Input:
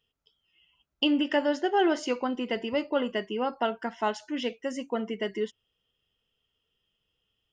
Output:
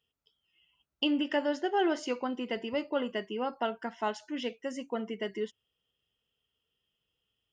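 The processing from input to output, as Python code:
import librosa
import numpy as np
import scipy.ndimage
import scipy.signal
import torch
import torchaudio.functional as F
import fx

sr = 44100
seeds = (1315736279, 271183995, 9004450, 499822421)

y = scipy.signal.sosfilt(scipy.signal.butter(2, 49.0, 'highpass', fs=sr, output='sos'), x)
y = y * 10.0 ** (-4.0 / 20.0)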